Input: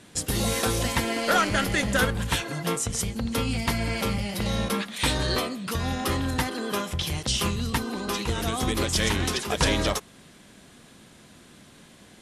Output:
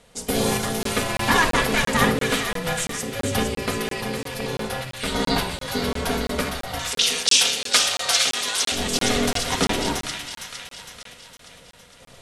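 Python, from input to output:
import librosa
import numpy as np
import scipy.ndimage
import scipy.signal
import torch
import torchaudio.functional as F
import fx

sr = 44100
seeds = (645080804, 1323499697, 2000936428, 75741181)

y = x * np.sin(2.0 * np.pi * 330.0 * np.arange(len(x)) / sr)
y = fx.weighting(y, sr, curve='ITU-R 468', at=(6.79, 8.72))
y = fx.tremolo_random(y, sr, seeds[0], hz=3.5, depth_pct=55)
y = fx.echo_wet_highpass(y, sr, ms=459, feedback_pct=52, hz=1500.0, wet_db=-5.5)
y = fx.room_shoebox(y, sr, seeds[1], volume_m3=3000.0, walls='furnished', distance_m=1.8)
y = fx.buffer_crackle(y, sr, first_s=0.83, period_s=0.34, block=1024, kind='zero')
y = F.gain(torch.from_numpy(y), 5.5).numpy()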